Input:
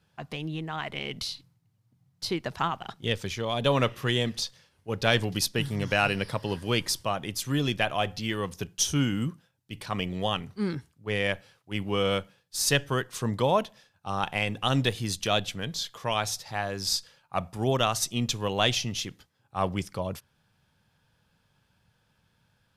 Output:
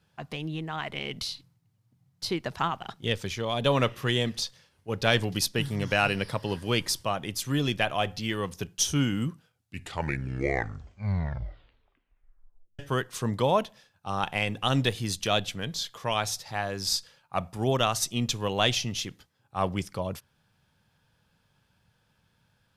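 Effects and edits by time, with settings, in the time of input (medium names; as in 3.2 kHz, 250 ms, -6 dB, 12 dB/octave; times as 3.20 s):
9.27 s: tape stop 3.52 s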